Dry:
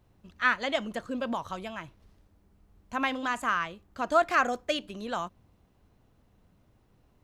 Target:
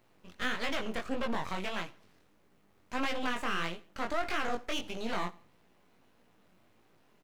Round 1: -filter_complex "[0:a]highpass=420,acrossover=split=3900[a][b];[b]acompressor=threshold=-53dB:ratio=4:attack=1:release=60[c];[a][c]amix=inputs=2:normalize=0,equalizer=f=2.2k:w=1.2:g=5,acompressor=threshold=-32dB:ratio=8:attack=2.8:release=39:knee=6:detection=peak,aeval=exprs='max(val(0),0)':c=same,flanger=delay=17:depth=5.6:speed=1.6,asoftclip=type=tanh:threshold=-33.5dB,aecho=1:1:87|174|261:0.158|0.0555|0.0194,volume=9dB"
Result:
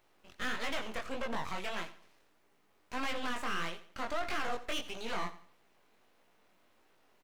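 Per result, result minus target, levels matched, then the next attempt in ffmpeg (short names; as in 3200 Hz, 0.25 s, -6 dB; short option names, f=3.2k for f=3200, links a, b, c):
soft clip: distortion +15 dB; echo-to-direct +7 dB; 250 Hz band -3.0 dB
-filter_complex "[0:a]highpass=420,acrossover=split=3900[a][b];[b]acompressor=threshold=-53dB:ratio=4:attack=1:release=60[c];[a][c]amix=inputs=2:normalize=0,equalizer=f=2.2k:w=1.2:g=5,acompressor=threshold=-32dB:ratio=8:attack=2.8:release=39:knee=6:detection=peak,aeval=exprs='max(val(0),0)':c=same,flanger=delay=17:depth=5.6:speed=1.6,asoftclip=type=tanh:threshold=-23.5dB,aecho=1:1:87|174|261:0.158|0.0555|0.0194,volume=9dB"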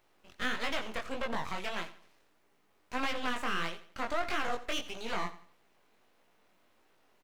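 echo-to-direct +7 dB; 250 Hz band -3.0 dB
-filter_complex "[0:a]highpass=420,acrossover=split=3900[a][b];[b]acompressor=threshold=-53dB:ratio=4:attack=1:release=60[c];[a][c]amix=inputs=2:normalize=0,equalizer=f=2.2k:w=1.2:g=5,acompressor=threshold=-32dB:ratio=8:attack=2.8:release=39:knee=6:detection=peak,aeval=exprs='max(val(0),0)':c=same,flanger=delay=17:depth=5.6:speed=1.6,asoftclip=type=tanh:threshold=-23.5dB,aecho=1:1:87|174:0.0708|0.0248,volume=9dB"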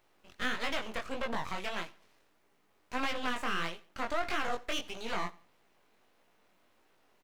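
250 Hz band -3.0 dB
-filter_complex "[0:a]highpass=200,acrossover=split=3900[a][b];[b]acompressor=threshold=-53dB:ratio=4:attack=1:release=60[c];[a][c]amix=inputs=2:normalize=0,equalizer=f=2.2k:w=1.2:g=5,acompressor=threshold=-32dB:ratio=8:attack=2.8:release=39:knee=6:detection=peak,aeval=exprs='max(val(0),0)':c=same,flanger=delay=17:depth=5.6:speed=1.6,asoftclip=type=tanh:threshold=-23.5dB,aecho=1:1:87|174:0.0708|0.0248,volume=9dB"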